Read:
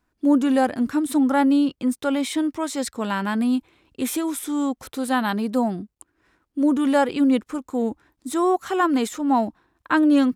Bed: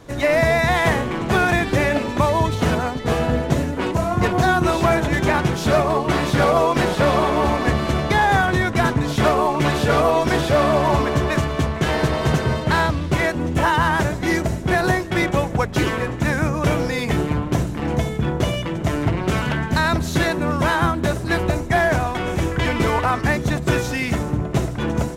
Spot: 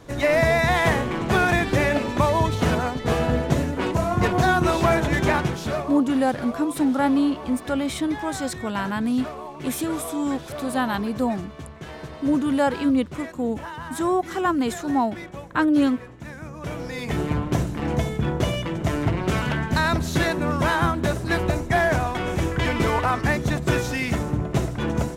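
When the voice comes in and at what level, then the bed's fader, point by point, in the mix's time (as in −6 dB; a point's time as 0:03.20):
5.65 s, −2.0 dB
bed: 0:05.32 −2 dB
0:06.19 −17.5 dB
0:16.40 −17.5 dB
0:17.31 −2.5 dB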